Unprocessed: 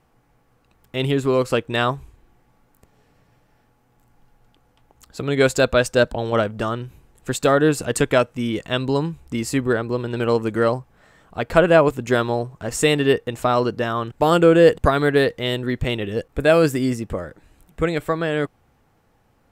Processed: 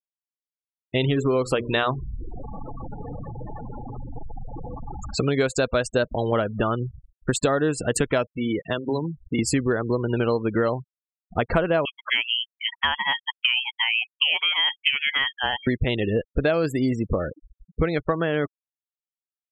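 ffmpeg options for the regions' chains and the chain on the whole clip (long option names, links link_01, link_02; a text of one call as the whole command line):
ffmpeg -i in.wav -filter_complex "[0:a]asettb=1/sr,asplit=3[link_01][link_02][link_03];[link_01]atrim=end=1.054[link_04];[link_02]atrim=start=1.05:end=5.22,asetpts=PTS-STARTPTS,afade=type=in:duration=0.004:curve=qsin,afade=type=out:start_time=4.166:duration=0.004:curve=qsin,aeval=exprs='val(0)+0.5*0.0237*sgn(val(0))':channel_layout=same,bandreject=frequency=60:width_type=h:width=6,bandreject=frequency=120:width_type=h:width=6,bandreject=frequency=180:width_type=h:width=6,bandreject=frequency=240:width_type=h:width=6,bandreject=frequency=300:width_type=h:width=6,bandreject=frequency=360:width_type=h:width=6,bandreject=frequency=420:width_type=h:width=6[link_05];[link_03]atrim=start=5.216[link_06];[link_04][link_05]acrossfade=duration=0.004:curve1=hsin:curve2=qsin[link_07];[link_07][link_06]acrossfade=duration=0.004:curve1=qsin:curve2=hsin,asettb=1/sr,asplit=3[link_08][link_09][link_10];[link_08]atrim=end=8.354[link_11];[link_09]atrim=start=8.35:end=9.39,asetpts=PTS-STARTPTS,afade=type=in:duration=0.004:curve=qsin,afade=type=out:start_time=1.036:duration=0.004:curve=qsin,bass=frequency=250:gain=-3,treble=frequency=4000:gain=-3,acrossover=split=260|2200[link_12][link_13][link_14];[link_12]acompressor=threshold=-36dB:ratio=4[link_15];[link_13]acompressor=threshold=-32dB:ratio=4[link_16];[link_14]acompressor=threshold=-42dB:ratio=4[link_17];[link_15][link_16][link_17]amix=inputs=3:normalize=0,bandreject=frequency=128.9:width_type=h:width=4,bandreject=frequency=257.8:width_type=h:width=4,bandreject=frequency=386.7:width_type=h:width=4,bandreject=frequency=515.6:width_type=h:width=4,bandreject=frequency=644.5:width_type=h:width=4,bandreject=frequency=773.4:width_type=h:width=4,bandreject=frequency=902.3:width_type=h:width=4,bandreject=frequency=1031.2:width_type=h:width=4,bandreject=frequency=1160.1:width_type=h:width=4,bandreject=frequency=1289:width_type=h:width=4,bandreject=frequency=1417.9:width_type=h:width=4,bandreject=frequency=1546.8:width_type=h:width=4,bandreject=frequency=1675.7:width_type=h:width=4[link_18];[link_10]atrim=start=9.386[link_19];[link_11][link_18]acrossfade=duration=0.004:curve1=hsin:curve2=qsin[link_20];[link_20][link_19]acrossfade=duration=0.004:curve1=qsin:curve2=hsin,asettb=1/sr,asplit=3[link_21][link_22][link_23];[link_21]atrim=end=11.854[link_24];[link_22]atrim=start=11.85:end=15.67,asetpts=PTS-STARTPTS,afade=type=in:duration=0.004:curve=qsin,afade=type=out:start_time=3.816:duration=0.004:curve=qsin,highpass=frequency=650:width=0.5412,highpass=frequency=650:width=1.3066,lowpass=frequency=3100:width_type=q:width=0.5098,lowpass=frequency=3100:width_type=q:width=0.6013,lowpass=frequency=3100:width_type=q:width=0.9,lowpass=frequency=3100:width_type=q:width=2.563,afreqshift=-3700[link_25];[link_23]atrim=start=15.666[link_26];[link_24][link_25]acrossfade=duration=0.004:curve1=hsin:curve2=qsin[link_27];[link_27][link_26]acrossfade=duration=0.004:curve1=qsin:curve2=hsin,afftfilt=real='re*gte(hypot(re,im),0.0316)':imag='im*gte(hypot(re,im),0.0316)':win_size=1024:overlap=0.75,acompressor=threshold=-27dB:ratio=6,volume=7.5dB" out.wav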